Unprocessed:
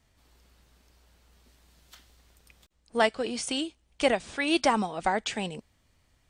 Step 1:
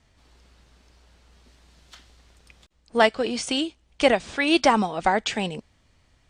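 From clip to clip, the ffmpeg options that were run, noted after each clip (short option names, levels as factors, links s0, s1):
-af "lowpass=7300,volume=1.88"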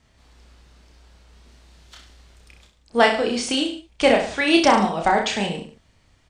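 -af "aecho=1:1:30|63|99.3|139.2|183.2:0.631|0.398|0.251|0.158|0.1,volume=1.12"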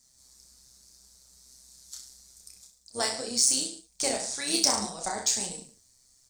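-af "aexciter=amount=9.3:drive=9.7:freq=4600,tremolo=f=130:d=0.571,flanger=delay=4:depth=7.9:regen=49:speed=1.8:shape=sinusoidal,volume=0.355"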